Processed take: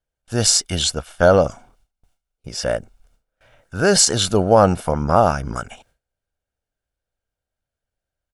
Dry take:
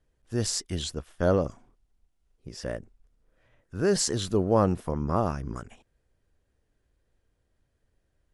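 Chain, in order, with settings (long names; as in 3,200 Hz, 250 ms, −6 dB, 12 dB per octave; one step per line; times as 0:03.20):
noise gate with hold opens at −55 dBFS
low-shelf EQ 320 Hz −10.5 dB
notch filter 2,000 Hz, Q 11
comb filter 1.4 ms, depth 44%
boost into a limiter +15.5 dB
level −1 dB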